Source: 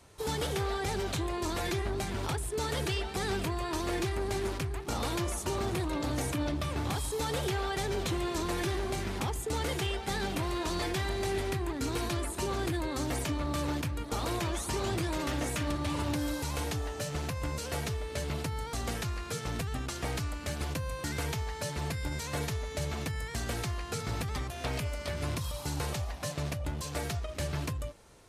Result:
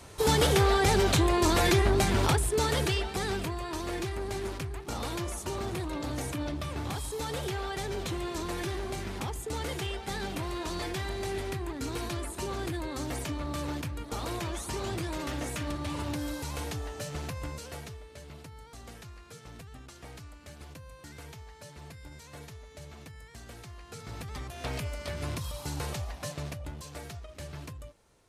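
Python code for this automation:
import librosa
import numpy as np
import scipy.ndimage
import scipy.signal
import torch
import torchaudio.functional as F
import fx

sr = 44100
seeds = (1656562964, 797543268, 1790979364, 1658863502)

y = fx.gain(x, sr, db=fx.line((2.2, 9.0), (3.62, -2.0), (17.38, -2.0), (18.14, -12.5), (23.64, -12.5), (24.68, -1.0), (26.21, -1.0), (27.03, -8.0)))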